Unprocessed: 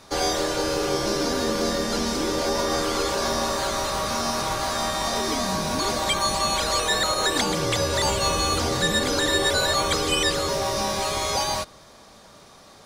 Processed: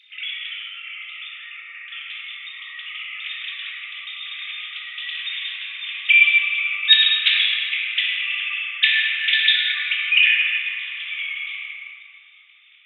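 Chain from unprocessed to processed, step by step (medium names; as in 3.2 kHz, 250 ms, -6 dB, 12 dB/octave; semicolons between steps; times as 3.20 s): formants replaced by sine waves; elliptic high-pass 2.3 kHz, stop band 70 dB; simulated room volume 130 m³, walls hard, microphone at 0.82 m; trim +6 dB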